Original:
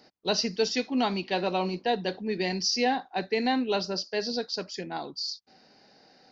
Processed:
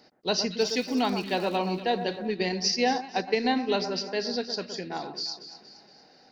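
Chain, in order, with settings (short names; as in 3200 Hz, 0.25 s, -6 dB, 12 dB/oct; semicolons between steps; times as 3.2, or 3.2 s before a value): 0.58–1.56 crackle 300/s -37 dBFS; echo with dull and thin repeats by turns 0.117 s, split 1700 Hz, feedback 69%, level -9 dB; 2.28–3.76 transient shaper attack +3 dB, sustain -6 dB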